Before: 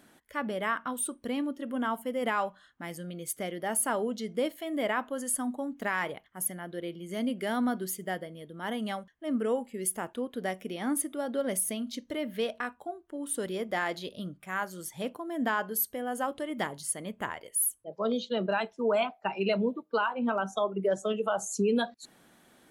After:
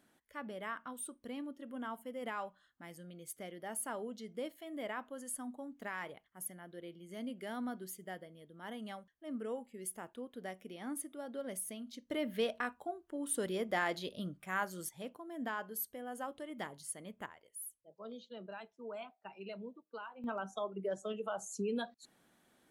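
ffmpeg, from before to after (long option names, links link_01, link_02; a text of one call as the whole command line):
ffmpeg -i in.wav -af "asetnsamples=nb_out_samples=441:pad=0,asendcmd='12.11 volume volume -3dB;14.89 volume volume -10.5dB;17.26 volume volume -18.5dB;20.24 volume volume -10dB',volume=-11.5dB" out.wav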